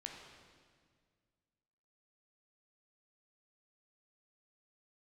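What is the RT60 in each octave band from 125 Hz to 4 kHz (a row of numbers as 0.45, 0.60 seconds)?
2.4, 2.3, 2.0, 1.7, 1.7, 1.6 seconds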